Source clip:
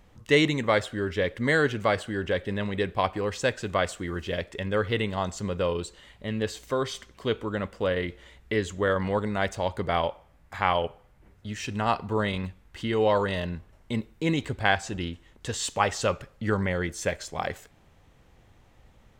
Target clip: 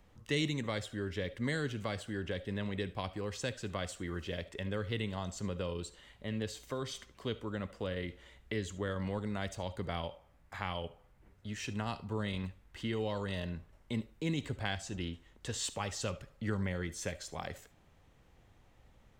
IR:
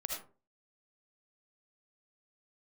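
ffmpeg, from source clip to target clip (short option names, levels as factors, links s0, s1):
-filter_complex "[0:a]acrossover=split=270|3000[s0][s1][s2];[s1]acompressor=threshold=0.02:ratio=3[s3];[s0][s3][s2]amix=inputs=3:normalize=0,asplit=2[s4][s5];[1:a]atrim=start_sample=2205,atrim=end_sample=3528[s6];[s5][s6]afir=irnorm=-1:irlink=0,volume=0.316[s7];[s4][s7]amix=inputs=2:normalize=0,volume=0.398"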